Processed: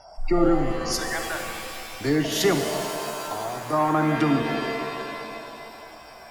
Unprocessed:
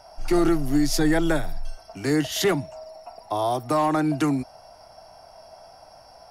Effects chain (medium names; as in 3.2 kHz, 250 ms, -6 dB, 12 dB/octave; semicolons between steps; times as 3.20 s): spectral gate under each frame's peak -30 dB strong; 0.71–2.01 s: Bessel high-pass 1.1 kHz, order 8; 2.58–3.73 s: compression, threshold -30 dBFS, peak gain reduction 10 dB; pitch-shifted reverb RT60 2.7 s, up +7 st, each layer -2 dB, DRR 5 dB